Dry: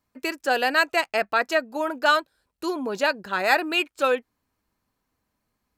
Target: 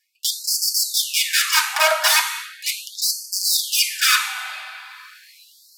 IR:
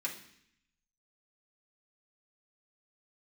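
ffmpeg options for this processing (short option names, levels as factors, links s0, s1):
-filter_complex "[0:a]aeval=exprs='(mod(10*val(0)+1,2)-1)/10':c=same,acontrast=31[s0];[1:a]atrim=start_sample=2205,asetrate=29106,aresample=44100[s1];[s0][s1]afir=irnorm=-1:irlink=0,areverse,acompressor=mode=upward:threshold=0.0631:ratio=2.5,areverse,afftfilt=real='re*gte(b*sr/1024,590*pow(4400/590,0.5+0.5*sin(2*PI*0.38*pts/sr)))':imag='im*gte(b*sr/1024,590*pow(4400/590,0.5+0.5*sin(2*PI*0.38*pts/sr)))':win_size=1024:overlap=0.75,volume=1.26"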